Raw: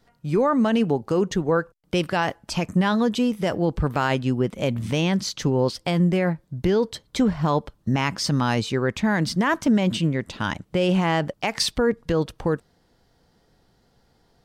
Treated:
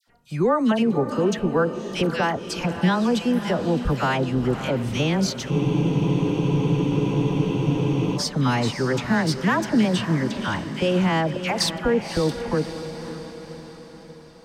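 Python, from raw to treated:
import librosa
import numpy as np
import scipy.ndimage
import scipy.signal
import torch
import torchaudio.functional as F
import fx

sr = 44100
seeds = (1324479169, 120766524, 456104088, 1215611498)

p1 = fx.dispersion(x, sr, late='lows', ms=76.0, hz=1400.0)
p2 = p1 + fx.echo_diffused(p1, sr, ms=556, feedback_pct=53, wet_db=-10, dry=0)
y = fx.spec_freeze(p2, sr, seeds[0], at_s=5.52, hold_s=2.65)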